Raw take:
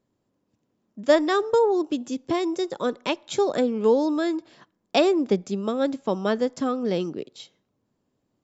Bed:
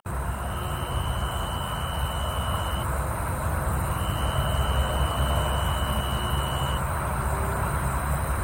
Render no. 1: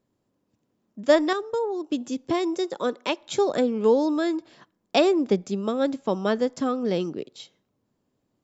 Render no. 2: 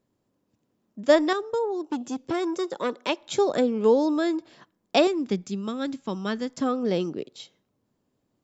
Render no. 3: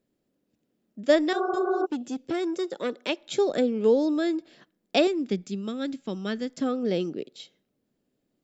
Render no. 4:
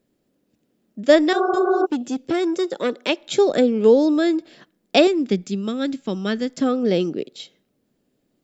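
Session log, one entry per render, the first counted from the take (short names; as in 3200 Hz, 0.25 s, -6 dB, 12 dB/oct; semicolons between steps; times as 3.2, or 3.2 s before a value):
1.33–1.92 gain -7 dB; 2.45–3.19 HPF 130 Hz -> 290 Hz
1.81–3.09 core saturation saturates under 910 Hz; 5.07–6.58 bell 580 Hz -11 dB 1.4 oct
1.36–1.83 spectral repair 350–1500 Hz before; fifteen-band EQ 100 Hz -12 dB, 1000 Hz -11 dB, 6300 Hz -4 dB
gain +7 dB; limiter -2 dBFS, peak gain reduction 1 dB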